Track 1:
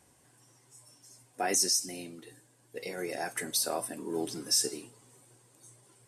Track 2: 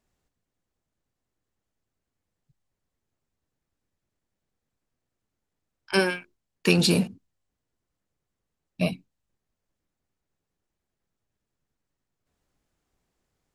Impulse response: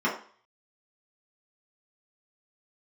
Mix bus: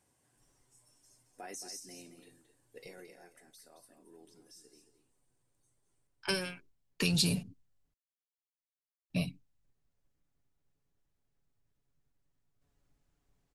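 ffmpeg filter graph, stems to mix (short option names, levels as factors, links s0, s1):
-filter_complex "[0:a]alimiter=level_in=1.12:limit=0.0631:level=0:latency=1:release=161,volume=0.891,volume=0.299,afade=t=out:st=2.87:d=0.24:silence=0.251189,asplit=2[s0][s1];[s1]volume=0.335[s2];[1:a]lowshelf=f=150:g=9.5,aecho=1:1:7.1:0.43,acrossover=split=120|3000[s3][s4][s5];[s4]acompressor=threshold=0.0355:ratio=6[s6];[s3][s6][s5]amix=inputs=3:normalize=0,adelay=350,volume=0.596,asplit=3[s7][s8][s9];[s7]atrim=end=7.94,asetpts=PTS-STARTPTS,afade=t=out:st=7.936:d=0.004:c=hsin[s10];[s8]atrim=start=7.94:end=9.1,asetpts=PTS-STARTPTS,volume=0[s11];[s9]atrim=start=9.1,asetpts=PTS-STARTPTS,afade=t=in:d=0.004:c=hsin[s12];[s10][s11][s12]concat=n=3:v=0:a=1[s13];[s2]aecho=0:1:222:1[s14];[s0][s13][s14]amix=inputs=3:normalize=0"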